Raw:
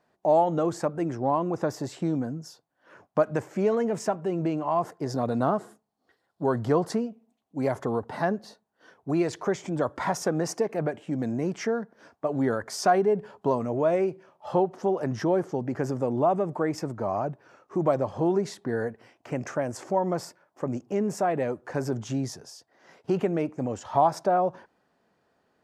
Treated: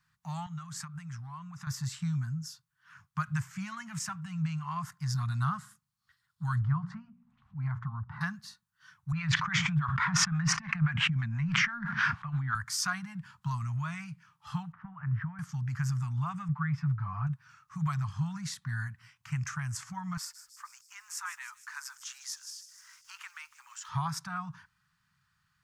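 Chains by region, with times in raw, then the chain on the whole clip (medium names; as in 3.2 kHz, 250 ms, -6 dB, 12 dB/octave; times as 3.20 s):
0.46–1.67 s: compression 2.5:1, threshold -34 dBFS + high-pass 130 Hz
6.61–8.21 s: low-pass 1.2 kHz + hum notches 60/120/180/240/300/360/420/480 Hz + upward compressor, threshold -31 dBFS
9.12–12.55 s: Chebyshev band-pass 160–2400 Hz + harmonic tremolo 6 Hz, crossover 520 Hz + level flattener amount 100%
14.72–15.39 s: compression 4:1, threshold -25 dBFS + inverse Chebyshev low-pass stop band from 7.8 kHz, stop band 70 dB
16.48–17.27 s: distance through air 380 m + band-stop 4.4 kHz, Q 15 + comb 6.9 ms, depth 84%
20.17–23.89 s: Chebyshev high-pass 880 Hz, order 5 + word length cut 12-bit, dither none + feedback echo behind a high-pass 154 ms, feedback 65%, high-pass 4.9 kHz, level -10 dB
whole clip: elliptic band-stop 150–1200 Hz, stop band 60 dB; tone controls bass +5 dB, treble +3 dB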